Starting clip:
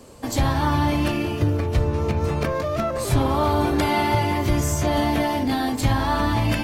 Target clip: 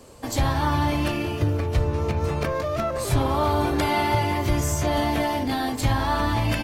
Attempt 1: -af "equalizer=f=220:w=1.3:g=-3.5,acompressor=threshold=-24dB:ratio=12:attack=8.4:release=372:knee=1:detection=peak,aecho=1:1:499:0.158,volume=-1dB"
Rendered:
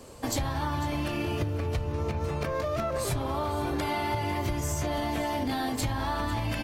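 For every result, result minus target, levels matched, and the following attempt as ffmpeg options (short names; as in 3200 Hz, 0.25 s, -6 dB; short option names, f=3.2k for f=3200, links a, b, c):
compressor: peak gain reduction +11 dB; echo-to-direct +10.5 dB
-af "equalizer=f=220:w=1.3:g=-3.5,aecho=1:1:499:0.158,volume=-1dB"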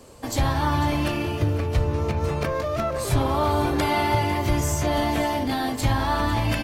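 echo-to-direct +10.5 dB
-af "equalizer=f=220:w=1.3:g=-3.5,aecho=1:1:499:0.0473,volume=-1dB"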